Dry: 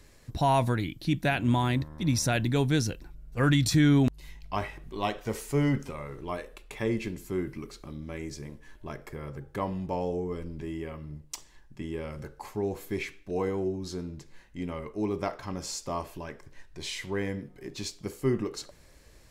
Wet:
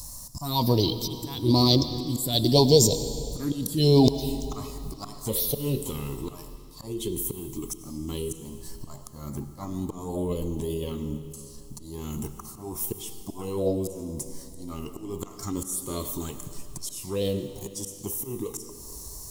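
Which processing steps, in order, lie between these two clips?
FFT filter 1 kHz 0 dB, 1.5 kHz -24 dB, 2.9 kHz +14 dB; slow attack 370 ms; in parallel at -0.5 dB: compression, threshold -41 dBFS, peak gain reduction 22.5 dB; on the sum: touch-sensitive phaser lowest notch 350 Hz, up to 1.5 kHz, full sweep at -22 dBFS; formant shift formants +5 st; on a send at -10.5 dB: reverberation RT60 2.6 s, pre-delay 56 ms; on the sum: trim +5.5 dB

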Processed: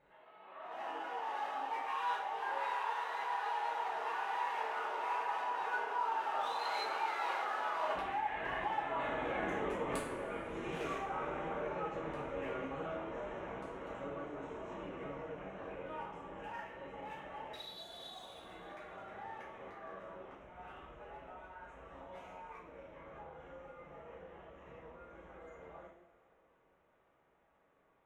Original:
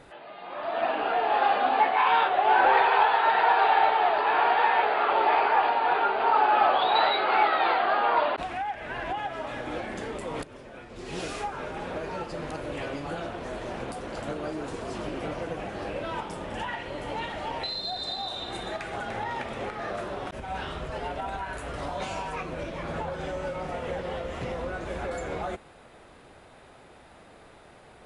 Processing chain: local Wiener filter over 9 samples; Doppler pass-by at 9.28 s, 18 m/s, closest 6.7 m; bass shelf 220 Hz -8.5 dB; reverse; compression 5:1, threshold -50 dBFS, peak gain reduction 16.5 dB; reverse; two-slope reverb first 0.52 s, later 3.3 s, from -20 dB, DRR -6 dB; trim +8 dB

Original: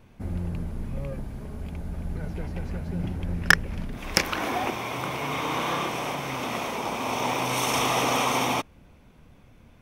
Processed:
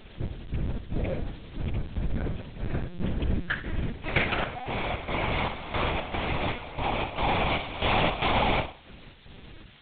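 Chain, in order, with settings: band-stop 1.1 kHz, Q 5.6; de-hum 155.4 Hz, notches 21; in parallel at -1 dB: compression 6:1, threshold -36 dBFS, peak gain reduction 22.5 dB; on the sum: trance gate "xx..xx.x" 115 bpm -12 dB; added noise blue -42 dBFS; on a send: flutter echo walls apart 9.1 m, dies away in 0.39 s; on the sum: LPC vocoder at 8 kHz pitch kept

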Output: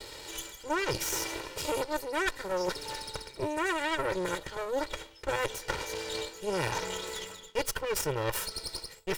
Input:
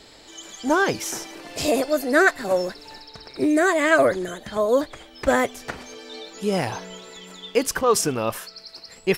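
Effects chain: comb filter that takes the minimum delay 2.1 ms; reverse; compression 6:1, threshold -35 dBFS, peak gain reduction 20 dB; reverse; Chebyshev shaper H 4 -15 dB, 8 -30 dB, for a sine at -21.5 dBFS; expander -55 dBFS; trim +4.5 dB

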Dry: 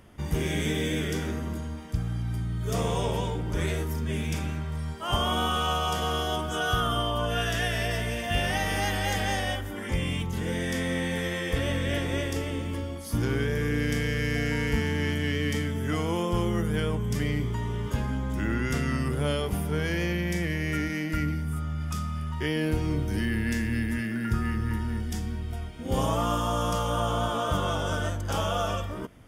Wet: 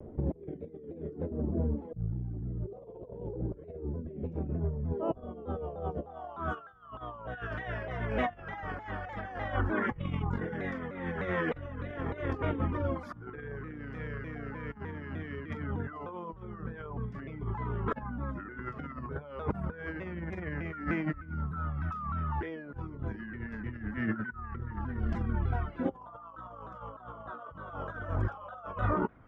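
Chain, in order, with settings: low-pass sweep 470 Hz -> 1.3 kHz, 5.97–6.47 s; compressor with a negative ratio -32 dBFS, ratio -0.5; reverb removal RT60 1.2 s; vibrato with a chosen wave saw down 3.3 Hz, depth 160 cents

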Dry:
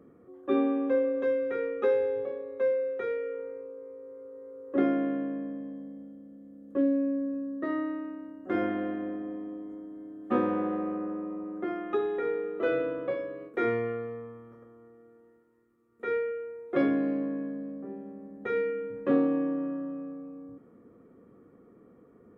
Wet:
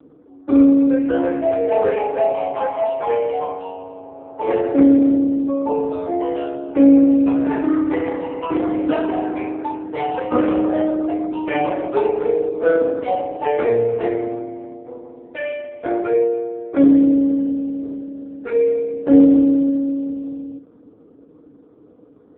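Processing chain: local Wiener filter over 15 samples; ever faster or slower copies 701 ms, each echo +4 st, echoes 3; feedback echo behind a high-pass 291 ms, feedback 34%, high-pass 1.9 kHz, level -18.5 dB; FDN reverb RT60 0.31 s, low-frequency decay 0.7×, high-frequency decay 0.9×, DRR -0.5 dB; trim +6 dB; AMR-NB 5.15 kbps 8 kHz

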